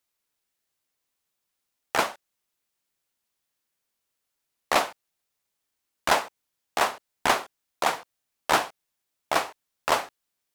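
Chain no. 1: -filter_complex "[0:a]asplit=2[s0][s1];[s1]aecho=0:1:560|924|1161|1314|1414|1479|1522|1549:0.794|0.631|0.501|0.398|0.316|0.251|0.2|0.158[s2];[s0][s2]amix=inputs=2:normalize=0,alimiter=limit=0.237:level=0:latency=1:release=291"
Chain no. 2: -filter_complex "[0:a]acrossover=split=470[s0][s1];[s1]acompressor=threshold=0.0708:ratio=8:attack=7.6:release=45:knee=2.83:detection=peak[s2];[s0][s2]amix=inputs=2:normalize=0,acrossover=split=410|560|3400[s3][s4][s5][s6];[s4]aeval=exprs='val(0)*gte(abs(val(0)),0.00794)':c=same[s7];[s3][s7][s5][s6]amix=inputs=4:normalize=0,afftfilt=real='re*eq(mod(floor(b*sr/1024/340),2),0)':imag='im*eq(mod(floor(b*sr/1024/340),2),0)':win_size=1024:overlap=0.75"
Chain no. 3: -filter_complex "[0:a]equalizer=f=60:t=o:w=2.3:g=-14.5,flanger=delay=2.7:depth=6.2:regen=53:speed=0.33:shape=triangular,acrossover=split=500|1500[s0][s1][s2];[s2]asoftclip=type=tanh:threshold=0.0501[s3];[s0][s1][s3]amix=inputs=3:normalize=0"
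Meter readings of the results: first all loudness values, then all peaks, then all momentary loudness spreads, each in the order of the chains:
-28.0 LUFS, -33.0 LUFS, -32.0 LUFS; -12.5 dBFS, -11.5 dBFS, -12.5 dBFS; 6 LU, 11 LU, 12 LU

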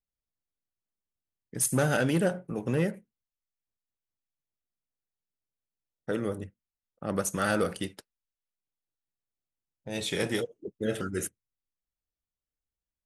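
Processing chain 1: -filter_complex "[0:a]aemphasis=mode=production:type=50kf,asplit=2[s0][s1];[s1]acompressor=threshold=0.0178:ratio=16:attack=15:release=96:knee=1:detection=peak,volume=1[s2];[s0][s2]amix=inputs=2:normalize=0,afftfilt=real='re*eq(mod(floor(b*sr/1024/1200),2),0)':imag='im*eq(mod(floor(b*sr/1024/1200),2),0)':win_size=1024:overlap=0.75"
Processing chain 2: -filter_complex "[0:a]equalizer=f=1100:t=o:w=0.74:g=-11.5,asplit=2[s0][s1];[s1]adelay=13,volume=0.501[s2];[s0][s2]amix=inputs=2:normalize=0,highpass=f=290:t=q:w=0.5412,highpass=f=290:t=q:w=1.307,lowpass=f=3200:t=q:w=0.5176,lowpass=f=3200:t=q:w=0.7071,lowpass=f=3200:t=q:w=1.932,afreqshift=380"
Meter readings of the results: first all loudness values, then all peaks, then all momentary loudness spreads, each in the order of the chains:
-27.5 LUFS, -33.0 LUFS; -9.0 dBFS, -16.5 dBFS; 13 LU, 17 LU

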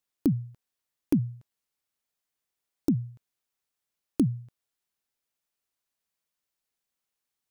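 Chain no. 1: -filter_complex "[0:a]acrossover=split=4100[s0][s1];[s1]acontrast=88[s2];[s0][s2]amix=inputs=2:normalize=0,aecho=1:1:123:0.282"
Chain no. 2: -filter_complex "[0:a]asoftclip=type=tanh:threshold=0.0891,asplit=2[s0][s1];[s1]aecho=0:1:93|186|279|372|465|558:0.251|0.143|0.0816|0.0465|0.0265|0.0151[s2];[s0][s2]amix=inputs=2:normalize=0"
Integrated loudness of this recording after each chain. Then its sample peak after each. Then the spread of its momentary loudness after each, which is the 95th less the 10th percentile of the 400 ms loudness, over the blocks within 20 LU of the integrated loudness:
-30.0 LUFS, -33.0 LUFS; -10.5 dBFS, -21.0 dBFS; 12 LU, 16 LU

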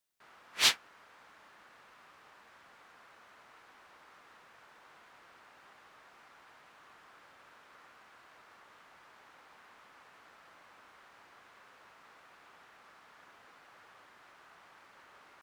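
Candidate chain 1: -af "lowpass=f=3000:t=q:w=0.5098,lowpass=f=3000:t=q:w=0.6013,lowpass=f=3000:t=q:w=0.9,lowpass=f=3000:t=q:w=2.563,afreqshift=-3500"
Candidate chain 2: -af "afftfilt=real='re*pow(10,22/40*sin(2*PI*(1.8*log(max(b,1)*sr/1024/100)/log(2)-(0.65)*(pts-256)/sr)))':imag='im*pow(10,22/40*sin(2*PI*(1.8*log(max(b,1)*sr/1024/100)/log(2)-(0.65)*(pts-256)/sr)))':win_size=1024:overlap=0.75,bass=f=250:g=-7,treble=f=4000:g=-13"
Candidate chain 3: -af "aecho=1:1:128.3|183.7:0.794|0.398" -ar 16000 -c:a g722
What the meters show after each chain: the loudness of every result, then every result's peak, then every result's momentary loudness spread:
-48.5 LUFS, -28.0 LUFS, -27.0 LUFS; -16.5 dBFS, -9.0 dBFS, -12.0 dBFS; 1 LU, 17 LU, 5 LU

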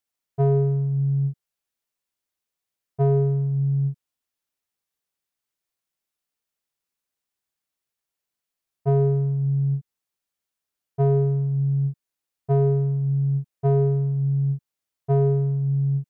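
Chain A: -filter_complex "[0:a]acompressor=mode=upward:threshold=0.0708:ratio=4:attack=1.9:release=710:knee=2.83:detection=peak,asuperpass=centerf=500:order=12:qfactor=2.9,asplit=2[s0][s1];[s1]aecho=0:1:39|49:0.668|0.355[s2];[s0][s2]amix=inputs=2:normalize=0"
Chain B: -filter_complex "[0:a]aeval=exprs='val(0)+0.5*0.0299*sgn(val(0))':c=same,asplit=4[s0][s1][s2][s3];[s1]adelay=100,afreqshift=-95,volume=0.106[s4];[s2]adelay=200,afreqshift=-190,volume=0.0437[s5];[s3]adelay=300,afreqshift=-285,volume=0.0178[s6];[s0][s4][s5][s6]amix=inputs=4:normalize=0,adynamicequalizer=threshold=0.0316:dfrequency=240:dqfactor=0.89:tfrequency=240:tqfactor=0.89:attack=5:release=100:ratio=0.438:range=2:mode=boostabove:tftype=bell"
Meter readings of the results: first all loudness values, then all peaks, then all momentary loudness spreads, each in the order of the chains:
-31.5 LUFS, -20.0 LUFS; -22.5 dBFS, -8.5 dBFS; 18 LU, 17 LU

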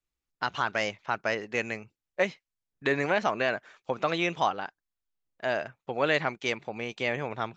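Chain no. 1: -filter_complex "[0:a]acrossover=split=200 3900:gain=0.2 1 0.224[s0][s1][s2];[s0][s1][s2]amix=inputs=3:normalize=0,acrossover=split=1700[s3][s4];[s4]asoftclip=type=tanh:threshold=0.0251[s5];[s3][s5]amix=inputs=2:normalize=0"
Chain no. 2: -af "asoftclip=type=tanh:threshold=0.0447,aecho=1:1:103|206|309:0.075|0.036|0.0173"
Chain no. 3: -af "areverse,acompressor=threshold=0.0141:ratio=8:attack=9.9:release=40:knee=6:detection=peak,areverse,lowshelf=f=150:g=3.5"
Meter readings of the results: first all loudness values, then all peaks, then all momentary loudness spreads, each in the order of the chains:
-31.0 LUFS, -35.0 LUFS, -39.0 LUFS; -13.0 dBFS, -26.0 dBFS, -21.5 dBFS; 10 LU, 8 LU, 6 LU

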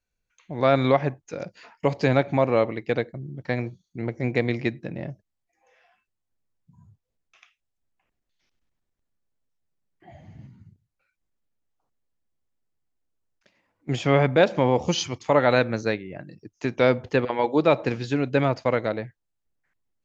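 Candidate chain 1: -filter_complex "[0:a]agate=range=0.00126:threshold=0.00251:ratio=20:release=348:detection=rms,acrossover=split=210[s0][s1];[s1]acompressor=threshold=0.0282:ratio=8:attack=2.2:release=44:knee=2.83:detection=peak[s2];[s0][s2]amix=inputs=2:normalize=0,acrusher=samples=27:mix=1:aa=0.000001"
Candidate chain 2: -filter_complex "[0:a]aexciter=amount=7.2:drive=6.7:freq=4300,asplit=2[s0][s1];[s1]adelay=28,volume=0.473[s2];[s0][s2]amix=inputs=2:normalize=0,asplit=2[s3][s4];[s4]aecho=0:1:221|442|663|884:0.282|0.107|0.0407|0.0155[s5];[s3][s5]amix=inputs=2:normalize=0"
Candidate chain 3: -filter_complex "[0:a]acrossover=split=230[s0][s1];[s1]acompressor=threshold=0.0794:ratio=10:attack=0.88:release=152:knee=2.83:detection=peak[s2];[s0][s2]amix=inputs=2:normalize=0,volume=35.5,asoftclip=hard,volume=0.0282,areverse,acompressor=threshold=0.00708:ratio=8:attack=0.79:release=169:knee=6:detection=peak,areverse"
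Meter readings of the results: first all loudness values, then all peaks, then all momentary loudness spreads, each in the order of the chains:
-31.5 LUFS, -21.5 LUFS, -46.0 LUFS; -17.0 dBFS, -2.5 dBFS, -38.5 dBFS; 13 LU, 16 LU, 15 LU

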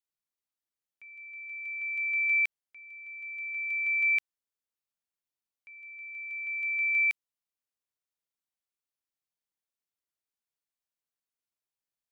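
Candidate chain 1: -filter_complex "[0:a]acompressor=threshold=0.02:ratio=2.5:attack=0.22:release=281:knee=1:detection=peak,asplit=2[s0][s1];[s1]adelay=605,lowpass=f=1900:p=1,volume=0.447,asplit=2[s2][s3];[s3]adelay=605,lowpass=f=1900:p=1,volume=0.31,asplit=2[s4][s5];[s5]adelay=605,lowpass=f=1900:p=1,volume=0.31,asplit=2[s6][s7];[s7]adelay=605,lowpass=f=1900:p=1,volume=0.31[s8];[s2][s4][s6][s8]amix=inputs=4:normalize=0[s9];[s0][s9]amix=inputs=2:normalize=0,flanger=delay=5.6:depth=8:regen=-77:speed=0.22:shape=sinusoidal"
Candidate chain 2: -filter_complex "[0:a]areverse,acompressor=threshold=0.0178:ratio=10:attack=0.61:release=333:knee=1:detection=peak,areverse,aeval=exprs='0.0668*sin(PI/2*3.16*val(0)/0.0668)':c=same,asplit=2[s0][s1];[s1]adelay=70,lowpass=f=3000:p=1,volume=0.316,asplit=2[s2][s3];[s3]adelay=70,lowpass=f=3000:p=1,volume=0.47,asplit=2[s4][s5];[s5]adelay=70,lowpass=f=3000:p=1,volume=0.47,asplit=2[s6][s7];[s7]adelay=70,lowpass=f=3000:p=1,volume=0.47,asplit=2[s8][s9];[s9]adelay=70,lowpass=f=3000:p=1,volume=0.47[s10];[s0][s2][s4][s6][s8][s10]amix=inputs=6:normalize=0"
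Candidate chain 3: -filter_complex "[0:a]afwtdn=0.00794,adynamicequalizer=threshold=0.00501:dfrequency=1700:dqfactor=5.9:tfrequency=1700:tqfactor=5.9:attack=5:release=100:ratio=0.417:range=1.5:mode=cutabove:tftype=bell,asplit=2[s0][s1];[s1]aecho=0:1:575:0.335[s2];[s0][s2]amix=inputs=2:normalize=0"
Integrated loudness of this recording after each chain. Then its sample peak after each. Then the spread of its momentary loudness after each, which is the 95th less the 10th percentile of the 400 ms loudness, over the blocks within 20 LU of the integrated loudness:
-39.5 LUFS, -24.5 LUFS, -29.0 LUFS; -31.0 dBFS, -21.5 dBFS, -21.5 dBFS; 15 LU, 12 LU, 16 LU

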